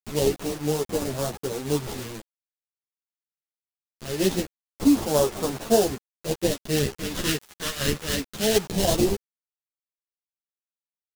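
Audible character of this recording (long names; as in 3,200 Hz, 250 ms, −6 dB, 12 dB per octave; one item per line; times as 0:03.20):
aliases and images of a low sample rate 2,300 Hz, jitter 20%
phaser sweep stages 2, 0.23 Hz, lowest notch 740–2,000 Hz
a quantiser's noise floor 6 bits, dither none
a shimmering, thickened sound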